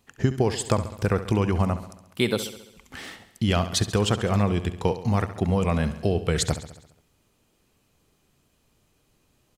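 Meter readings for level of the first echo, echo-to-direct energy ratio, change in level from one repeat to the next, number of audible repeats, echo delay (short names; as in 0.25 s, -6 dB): -13.0 dB, -11.0 dB, -4.5 dB, 5, 68 ms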